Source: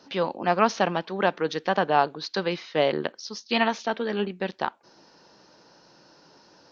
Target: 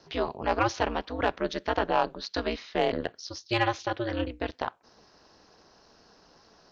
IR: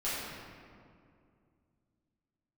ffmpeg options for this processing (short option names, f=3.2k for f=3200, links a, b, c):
-af "asoftclip=type=tanh:threshold=-9dB,aeval=exprs='val(0)*sin(2*PI*120*n/s)':c=same"